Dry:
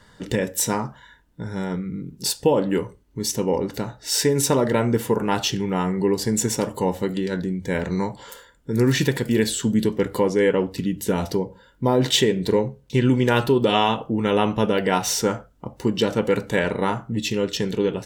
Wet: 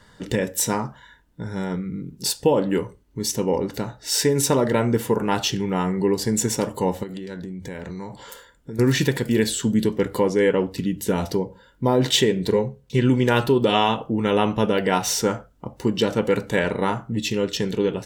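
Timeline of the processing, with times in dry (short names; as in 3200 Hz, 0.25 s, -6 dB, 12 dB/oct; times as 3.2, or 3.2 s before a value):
7.03–8.79 compressor 5:1, threshold -30 dBFS
12.51–12.99 notch comb 300 Hz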